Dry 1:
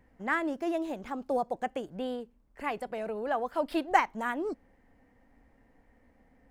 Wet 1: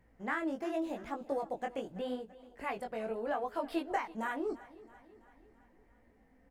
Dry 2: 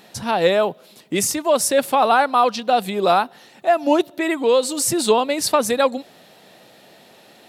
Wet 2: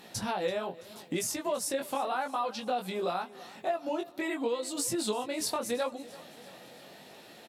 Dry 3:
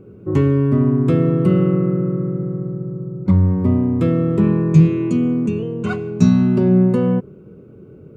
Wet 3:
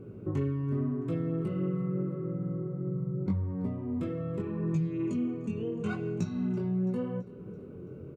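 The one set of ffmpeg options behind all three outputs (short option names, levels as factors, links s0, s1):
-filter_complex "[0:a]acompressor=threshold=0.0447:ratio=6,flanger=delay=17.5:depth=5.1:speed=0.82,asplit=2[s0][s1];[s1]aecho=0:1:333|666|999|1332|1665:0.106|0.0593|0.0332|0.0186|0.0104[s2];[s0][s2]amix=inputs=2:normalize=0" -ar 48000 -c:a libopus -b:a 256k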